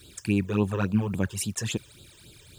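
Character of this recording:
a quantiser's noise floor 10 bits, dither none
phaser sweep stages 12, 3.6 Hz, lowest notch 220–2,000 Hz

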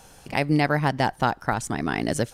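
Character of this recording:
background noise floor −51 dBFS
spectral slope −5.0 dB per octave

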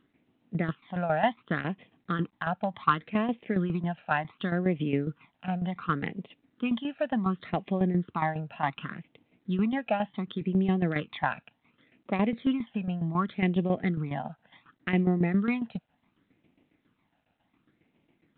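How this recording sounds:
phaser sweep stages 12, 0.68 Hz, lowest notch 350–1,400 Hz
tremolo saw down 7.3 Hz, depth 70%
G.726

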